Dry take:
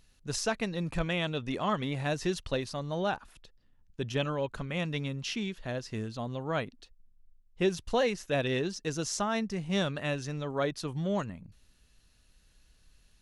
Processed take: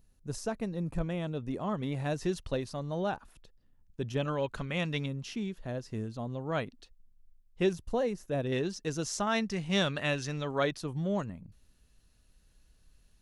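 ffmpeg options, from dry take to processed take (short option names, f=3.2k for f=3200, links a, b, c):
-af "asetnsamples=n=441:p=0,asendcmd='1.83 equalizer g -6.5;4.28 equalizer g 1.5;5.06 equalizer g -9;6.52 equalizer g -2;7.73 equalizer g -13.5;8.52 equalizer g -3;9.27 equalizer g 4;10.77 equalizer g -6',equalizer=f=3.1k:t=o:w=3:g=-14"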